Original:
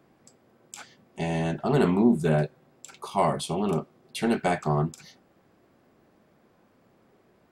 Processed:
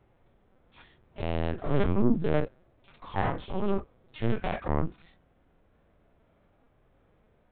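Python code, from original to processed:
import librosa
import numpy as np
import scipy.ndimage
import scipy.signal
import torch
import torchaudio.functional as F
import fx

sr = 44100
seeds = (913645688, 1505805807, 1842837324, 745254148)

y = fx.self_delay(x, sr, depth_ms=0.28)
y = fx.lpc_vocoder(y, sr, seeds[0], excitation='pitch_kept', order=8)
y = fx.hpss(y, sr, part='percussive', gain_db=-12)
y = F.gain(torch.from_numpy(y), 1.0).numpy()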